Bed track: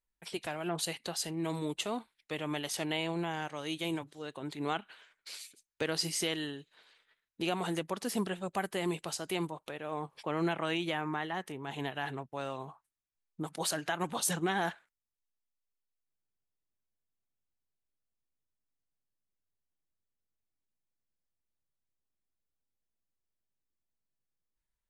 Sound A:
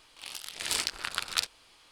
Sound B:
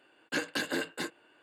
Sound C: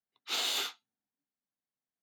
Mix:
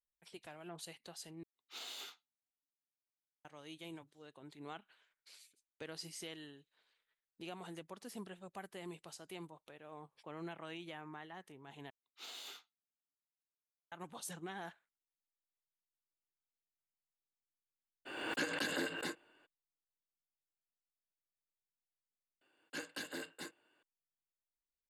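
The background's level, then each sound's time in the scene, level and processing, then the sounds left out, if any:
bed track -14.5 dB
1.43 replace with C -15.5 dB
11.9 replace with C -17.5 dB
18.05 add B -6 dB, fades 0.02 s + backwards sustainer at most 42 dB/s
22.41 replace with B -13 dB + high shelf 4800 Hz +6 dB
not used: A

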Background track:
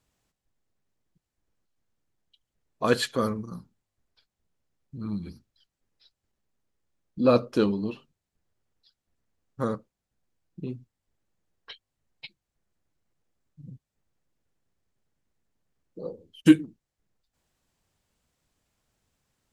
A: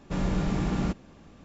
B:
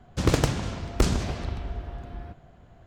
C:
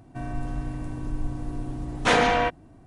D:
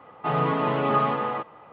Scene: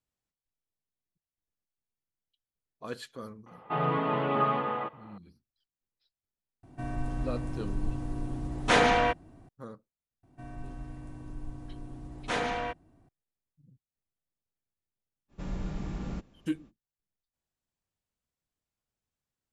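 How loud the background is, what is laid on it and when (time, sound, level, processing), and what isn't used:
background track -16 dB
3.46 add D -4.5 dB
6.63 add C -2.5 dB
10.23 add C -11 dB
15.28 add A -11.5 dB, fades 0.05 s + low shelf 82 Hz +8 dB
not used: B

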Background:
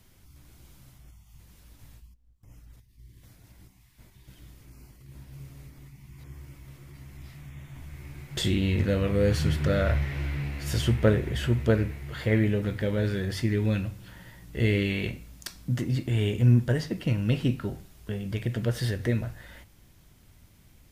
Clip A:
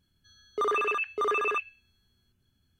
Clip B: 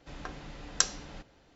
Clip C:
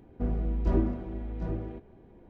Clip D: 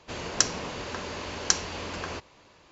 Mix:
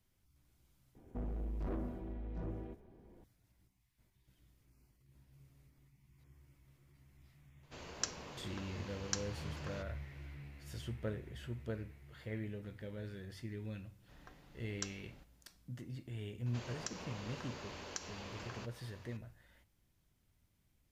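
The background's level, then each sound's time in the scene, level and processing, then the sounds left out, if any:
background -19 dB
0.95 add C -6.5 dB + soft clip -29 dBFS
7.63 add D -15 dB
14.02 add B -17 dB
16.46 add D -4 dB + compressor 2:1, threshold -48 dBFS
not used: A

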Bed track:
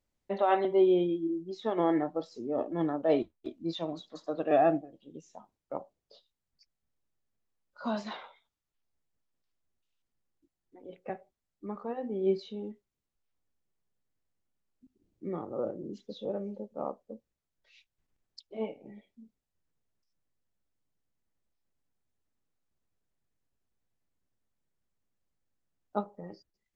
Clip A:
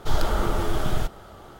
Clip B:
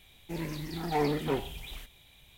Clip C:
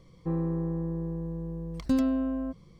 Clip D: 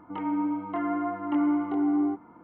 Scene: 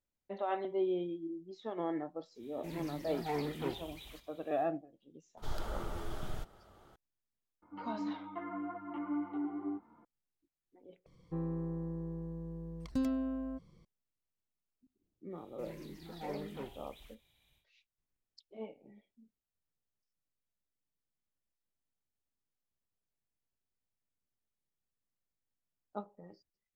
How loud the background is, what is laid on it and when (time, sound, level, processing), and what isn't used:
bed track -9.5 dB
2.34 add B -8 dB, fades 0.10 s + HPF 46 Hz
5.37 add A -16 dB
7.62 add D -8.5 dB + ensemble effect
11.06 replace with C -8 dB
15.29 add B -14.5 dB, fades 0.10 s

